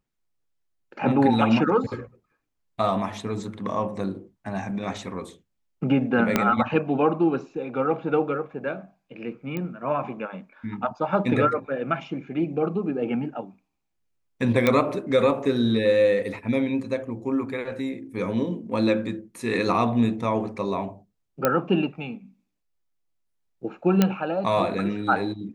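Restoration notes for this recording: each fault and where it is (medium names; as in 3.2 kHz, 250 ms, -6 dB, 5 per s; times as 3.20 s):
6.36 s: pop -5 dBFS
9.57 s: pop -18 dBFS
14.67 s: pop -7 dBFS
21.45 s: pop -6 dBFS
24.02 s: pop -5 dBFS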